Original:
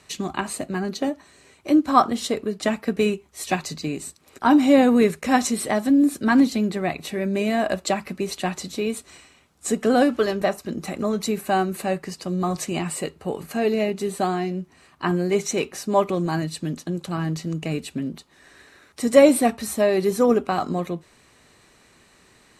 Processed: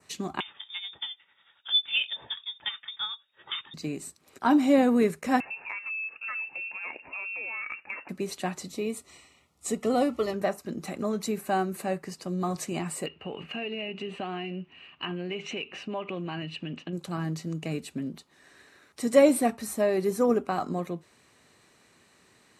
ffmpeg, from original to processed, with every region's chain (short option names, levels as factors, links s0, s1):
-filter_complex "[0:a]asettb=1/sr,asplit=3[s0][s1][s2];[s0]atrim=end=0.404[s3];[s1]atrim=start=0.4:end=3.74,asetpts=PTS-STARTPTS,afade=t=in:d=0.004:c=qsin,afade=t=out:st=3.336:d=0.004:c=qsin,lowpass=f=3200:t=q:w=0.5098,lowpass=f=3200:t=q:w=0.6013,lowpass=f=3200:t=q:w=0.9,lowpass=f=3200:t=q:w=2.563,afreqshift=-3800,tremolo=f=11:d=0.56[s4];[s2]atrim=start=3.736[s5];[s3][s4]acrossfade=d=0.004:c1=hsin:c2=qsin[s6];[s6][s5]acrossfade=d=0.004:c1=qsin:c2=hsin,asettb=1/sr,asplit=3[s7][s8][s9];[s7]atrim=end=5.404[s10];[s8]atrim=start=5.4:end=8.09,asetpts=PTS-STARTPTS,afade=t=in:d=0.004:c=qsin,afade=t=out:st=2.686:d=0.004:c=qsin,lowpass=f=2500:t=q:w=0.5098,lowpass=f=2500:t=q:w=0.6013,lowpass=f=2500:t=q:w=0.9,lowpass=f=2500:t=q:w=2.563,afreqshift=-2900,acompressor=threshold=0.0562:ratio=4:attack=3.2:release=140:knee=1:detection=peak[s11];[s9]atrim=start=8.086[s12];[s10][s11]acrossfade=d=0.004:c1=hsin:c2=qsin[s13];[s13][s12]acrossfade=d=0.004:c1=qsin:c2=hsin,asettb=1/sr,asplit=3[s14][s15][s16];[s14]atrim=end=8.654[s17];[s15]atrim=start=8.65:end=10.34,asetpts=PTS-STARTPTS,afade=t=in:d=0.004:c=qsin,afade=t=out:st=1.686:d=0.004:c=qsin,asubboost=boost=6.5:cutoff=110,asuperstop=centerf=1600:order=12:qfactor=5.4[s18];[s16]atrim=start=10.336[s19];[s17][s18]acrossfade=d=0.004:c1=hsin:c2=qsin[s20];[s20][s19]acrossfade=d=0.004:c1=qsin:c2=hsin,asettb=1/sr,asplit=3[s21][s22][s23];[s21]atrim=end=13.064[s24];[s22]atrim=start=13.06:end=16.93,asetpts=PTS-STARTPTS,afade=t=in:d=0.004:c=qsin,afade=t=out:st=3.866:d=0.004:c=qsin,lowpass=f=2800:t=q:w=13,acompressor=threshold=0.0562:ratio=4:attack=3.2:release=140:knee=1:detection=peak[s25];[s23]atrim=start=16.926[s26];[s24][s25]acrossfade=d=0.004:c1=hsin:c2=qsin[s27];[s27][s26]acrossfade=d=0.004:c1=qsin:c2=hsin,highpass=87,adynamicequalizer=threshold=0.00501:dfrequency=3500:dqfactor=1.5:tfrequency=3500:tqfactor=1.5:attack=5:release=100:ratio=0.375:range=3:mode=cutabove:tftype=bell,volume=0.531"